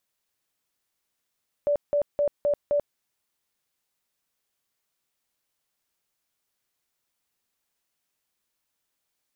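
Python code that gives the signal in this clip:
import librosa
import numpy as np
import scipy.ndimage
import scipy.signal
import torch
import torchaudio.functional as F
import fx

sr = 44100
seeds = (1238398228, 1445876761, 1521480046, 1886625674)

y = fx.tone_burst(sr, hz=581.0, cycles=51, every_s=0.26, bursts=5, level_db=-19.5)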